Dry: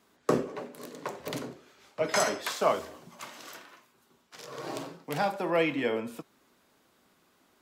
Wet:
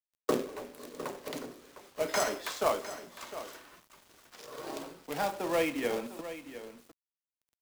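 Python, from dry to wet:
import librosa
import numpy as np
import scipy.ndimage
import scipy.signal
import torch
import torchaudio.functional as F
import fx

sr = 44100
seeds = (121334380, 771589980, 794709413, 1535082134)

p1 = scipy.signal.sosfilt(scipy.signal.butter(2, 270.0, 'highpass', fs=sr, output='sos'), x)
p2 = p1 + fx.echo_single(p1, sr, ms=706, db=-13.0, dry=0)
p3 = fx.quant_companded(p2, sr, bits=4)
p4 = fx.low_shelf(p3, sr, hz=350.0, db=6.0)
y = F.gain(torch.from_numpy(p4), -4.5).numpy()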